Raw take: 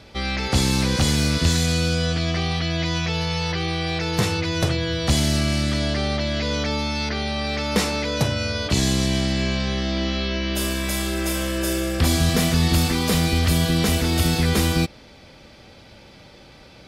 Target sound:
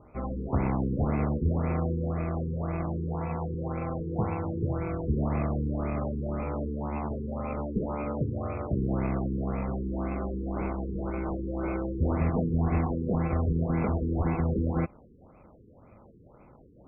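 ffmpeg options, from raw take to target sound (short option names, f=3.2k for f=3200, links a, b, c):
-af "acrusher=samples=24:mix=1:aa=0.000001,bandreject=f=1.6k:w=6.2,afftfilt=real='re*lt(b*sr/1024,470*pow(2700/470,0.5+0.5*sin(2*PI*1.9*pts/sr)))':imag='im*lt(b*sr/1024,470*pow(2700/470,0.5+0.5*sin(2*PI*1.9*pts/sr)))':win_size=1024:overlap=0.75,volume=-7dB"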